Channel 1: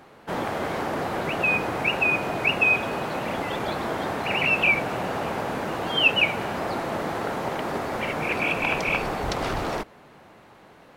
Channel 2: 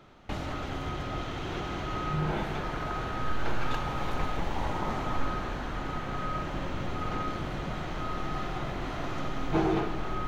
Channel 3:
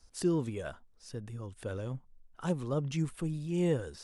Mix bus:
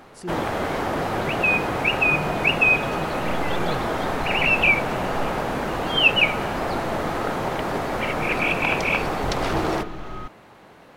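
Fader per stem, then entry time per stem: +2.5, −1.5, −5.0 decibels; 0.00, 0.00, 0.00 seconds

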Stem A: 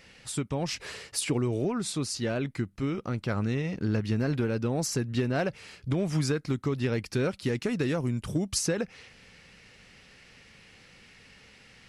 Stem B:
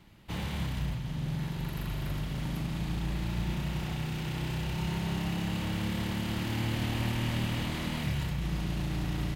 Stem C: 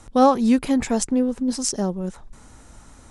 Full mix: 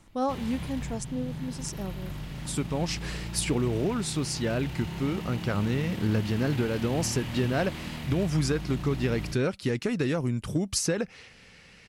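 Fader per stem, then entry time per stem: +1.0, −3.5, −13.0 decibels; 2.20, 0.00, 0.00 seconds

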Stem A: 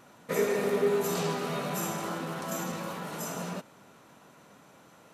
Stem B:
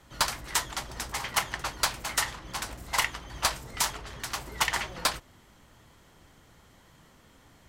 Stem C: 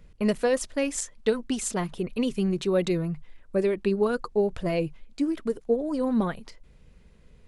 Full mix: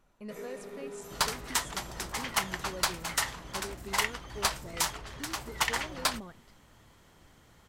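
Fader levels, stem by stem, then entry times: −16.5, −2.0, −19.0 decibels; 0.00, 1.00, 0.00 seconds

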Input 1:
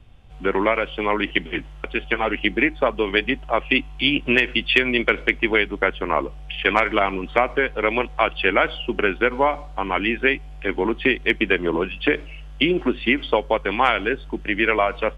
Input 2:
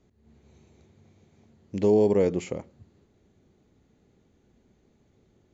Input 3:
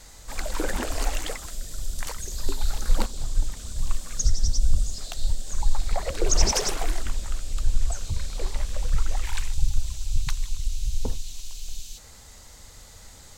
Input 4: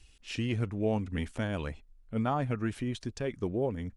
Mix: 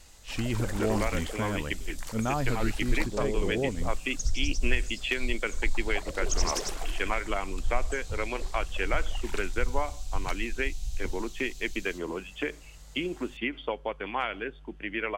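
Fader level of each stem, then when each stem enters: −12.5, −13.5, −7.5, +0.5 decibels; 0.35, 1.30, 0.00, 0.00 seconds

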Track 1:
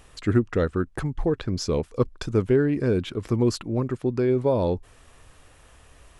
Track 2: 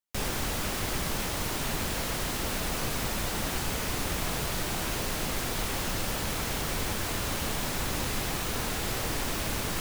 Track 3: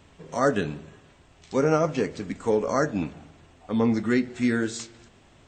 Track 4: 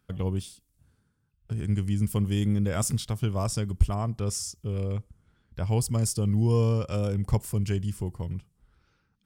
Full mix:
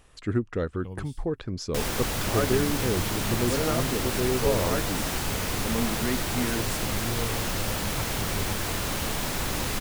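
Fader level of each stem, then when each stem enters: −5.5, +2.0, −7.0, −10.5 decibels; 0.00, 1.60, 1.95, 0.65 seconds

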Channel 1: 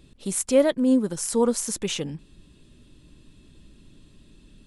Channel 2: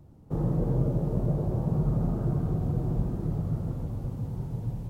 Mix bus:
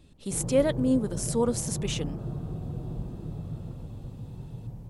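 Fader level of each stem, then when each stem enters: −4.5, −7.0 decibels; 0.00, 0.00 seconds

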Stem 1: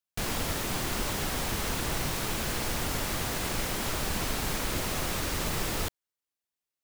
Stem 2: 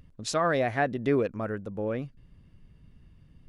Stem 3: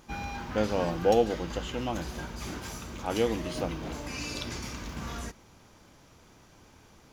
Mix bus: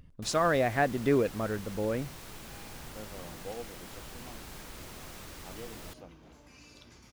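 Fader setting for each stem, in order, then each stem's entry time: −15.0, −0.5, −18.5 decibels; 0.05, 0.00, 2.40 seconds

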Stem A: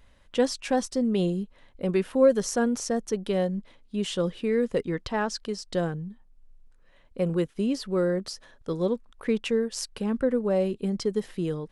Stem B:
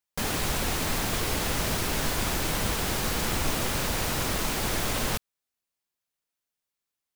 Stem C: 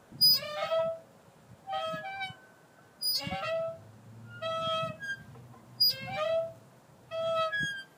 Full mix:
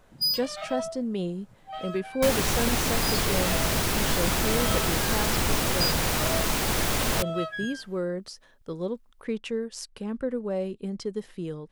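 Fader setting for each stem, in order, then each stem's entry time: −5.0, +2.5, −3.0 decibels; 0.00, 2.05, 0.00 seconds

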